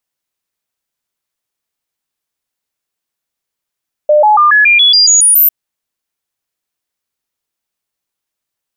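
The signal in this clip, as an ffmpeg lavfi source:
-f lavfi -i "aevalsrc='0.631*clip(min(mod(t,0.14),0.14-mod(t,0.14))/0.005,0,1)*sin(2*PI*600*pow(2,floor(t/0.14)/2)*mod(t,0.14))':d=1.4:s=44100"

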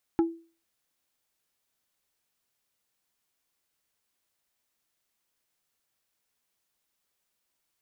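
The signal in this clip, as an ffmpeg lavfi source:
-f lavfi -i "aevalsrc='0.141*pow(10,-3*t/0.37)*sin(2*PI*332*t)+0.0473*pow(10,-3*t/0.123)*sin(2*PI*830*t)+0.0158*pow(10,-3*t/0.07)*sin(2*PI*1328*t)+0.00531*pow(10,-3*t/0.054)*sin(2*PI*1660*t)+0.00178*pow(10,-3*t/0.039)*sin(2*PI*2158*t)':d=0.45:s=44100"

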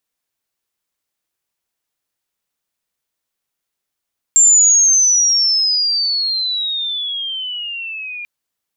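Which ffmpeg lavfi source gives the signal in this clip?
-f lavfi -i "aevalsrc='pow(10,(-6-19.5*t/3.89)/20)*sin(2*PI*7400*3.89/log(2400/7400)*(exp(log(2400/7400)*t/3.89)-1))':d=3.89:s=44100"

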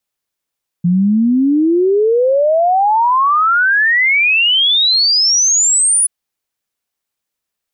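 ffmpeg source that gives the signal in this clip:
-f lavfi -i "aevalsrc='0.355*clip(min(t,5.23-t)/0.01,0,1)*sin(2*PI*170*5.23/log(10000/170)*(exp(log(10000/170)*t/5.23)-1))':d=5.23:s=44100"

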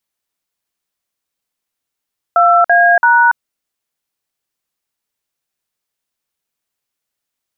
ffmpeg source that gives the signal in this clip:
-f lavfi -i "aevalsrc='0.355*clip(min(mod(t,0.335),0.284-mod(t,0.335))/0.002,0,1)*(eq(floor(t/0.335),0)*(sin(2*PI*697*mod(t,0.335))+sin(2*PI*1336*mod(t,0.335)))+eq(floor(t/0.335),1)*(sin(2*PI*697*mod(t,0.335))+sin(2*PI*1633*mod(t,0.335)))+eq(floor(t/0.335),2)*(sin(2*PI*941*mod(t,0.335))+sin(2*PI*1477*mod(t,0.335))))':d=1.005:s=44100"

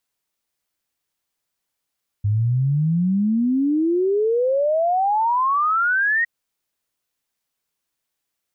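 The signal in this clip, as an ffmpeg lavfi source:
-f lavfi -i "aevalsrc='0.158*clip(min(t,4.01-t)/0.01,0,1)*sin(2*PI*100*4.01/log(1900/100)*(exp(log(1900/100)*t/4.01)-1))':d=4.01:s=44100"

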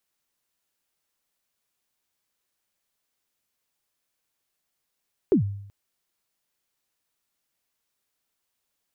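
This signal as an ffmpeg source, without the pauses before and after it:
-f lavfi -i "aevalsrc='0.224*pow(10,-3*t/0.72)*sin(2*PI*(440*0.107/log(100/440)*(exp(log(100/440)*min(t,0.107)/0.107)-1)+100*max(t-0.107,0)))':d=0.38:s=44100"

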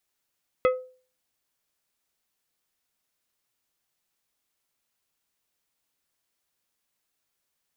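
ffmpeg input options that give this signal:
-f lavfi -i "aevalsrc='0.178*pow(10,-3*t/0.41)*sin(2*PI*510*t)+0.0891*pow(10,-3*t/0.216)*sin(2*PI*1275*t)+0.0447*pow(10,-3*t/0.155)*sin(2*PI*2040*t)+0.0224*pow(10,-3*t/0.133)*sin(2*PI*2550*t)+0.0112*pow(10,-3*t/0.111)*sin(2*PI*3315*t)':d=0.89:s=44100"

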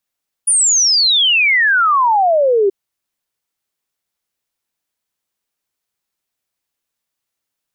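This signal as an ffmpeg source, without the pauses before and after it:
-f lavfi -i "aevalsrc='0.335*clip(min(t,2.23-t)/0.01,0,1)*sin(2*PI*9800*2.23/log(380/9800)*(exp(log(380/9800)*t/2.23)-1))':d=2.23:s=44100"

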